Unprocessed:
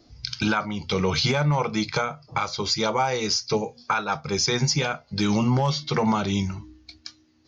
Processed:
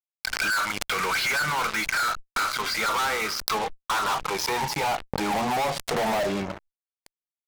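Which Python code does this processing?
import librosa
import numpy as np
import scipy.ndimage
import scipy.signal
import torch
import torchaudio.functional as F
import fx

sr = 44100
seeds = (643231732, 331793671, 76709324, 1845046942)

p1 = fx.dynamic_eq(x, sr, hz=2200.0, q=3.2, threshold_db=-46.0, ratio=4.0, max_db=6)
p2 = fx.level_steps(p1, sr, step_db=19)
p3 = p1 + F.gain(torch.from_numpy(p2), -2.0).numpy()
p4 = fx.filter_sweep_bandpass(p3, sr, from_hz=1500.0, to_hz=580.0, start_s=2.53, end_s=6.43, q=6.0)
p5 = fx.fuzz(p4, sr, gain_db=50.0, gate_db=-51.0)
p6 = fx.pre_swell(p5, sr, db_per_s=40.0)
y = F.gain(torch.from_numpy(p6), -10.0).numpy()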